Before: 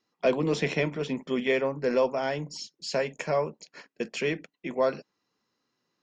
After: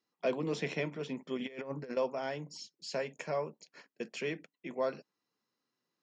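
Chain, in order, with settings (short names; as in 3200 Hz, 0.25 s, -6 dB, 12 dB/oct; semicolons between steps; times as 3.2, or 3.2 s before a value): 1.37–1.97 negative-ratio compressor -31 dBFS, ratio -0.5; HPF 100 Hz; gain -8 dB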